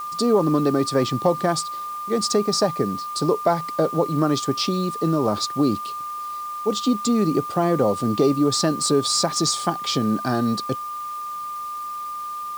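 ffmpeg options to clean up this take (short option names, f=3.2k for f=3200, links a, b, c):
-af "bandreject=f=1.2k:w=30,afwtdn=0.0045"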